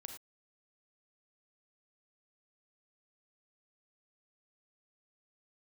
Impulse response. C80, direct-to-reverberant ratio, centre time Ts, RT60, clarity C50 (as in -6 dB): 9.0 dB, 4.5 dB, 20 ms, no single decay rate, 6.0 dB